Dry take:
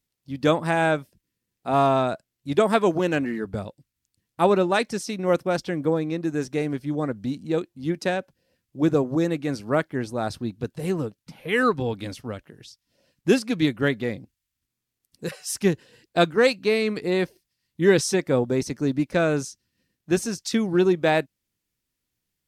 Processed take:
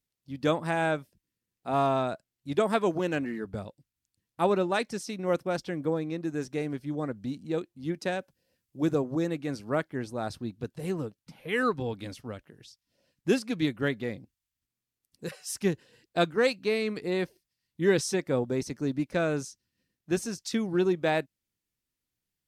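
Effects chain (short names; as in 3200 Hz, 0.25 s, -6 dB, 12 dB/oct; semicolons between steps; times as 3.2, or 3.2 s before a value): 8.12–8.95 high shelf 5600 Hz +6.5 dB; gain -6 dB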